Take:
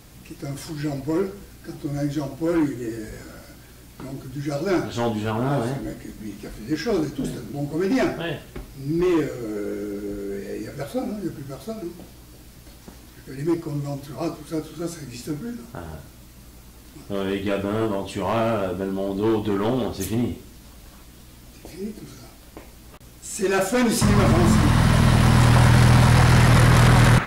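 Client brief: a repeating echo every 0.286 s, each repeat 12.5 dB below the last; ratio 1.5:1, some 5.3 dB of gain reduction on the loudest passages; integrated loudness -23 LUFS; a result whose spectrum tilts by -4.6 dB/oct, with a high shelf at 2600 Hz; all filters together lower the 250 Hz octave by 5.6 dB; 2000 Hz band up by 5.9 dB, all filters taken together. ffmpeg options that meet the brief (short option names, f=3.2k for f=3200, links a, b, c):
-af "equalizer=f=250:t=o:g=-8.5,equalizer=f=2k:t=o:g=6,highshelf=f=2.6k:g=3.5,acompressor=threshold=-27dB:ratio=1.5,aecho=1:1:286|572|858:0.237|0.0569|0.0137,volume=4dB"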